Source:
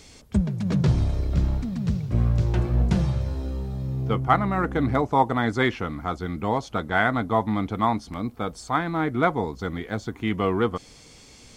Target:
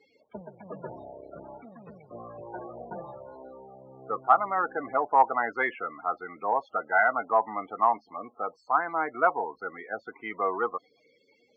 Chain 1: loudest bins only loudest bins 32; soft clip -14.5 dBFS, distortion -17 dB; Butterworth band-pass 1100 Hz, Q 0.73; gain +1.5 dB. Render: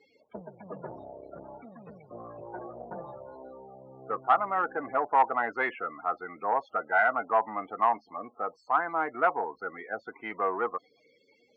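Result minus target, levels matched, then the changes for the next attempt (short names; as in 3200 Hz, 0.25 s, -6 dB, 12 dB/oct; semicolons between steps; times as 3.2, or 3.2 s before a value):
soft clip: distortion +13 dB
change: soft clip -6 dBFS, distortion -30 dB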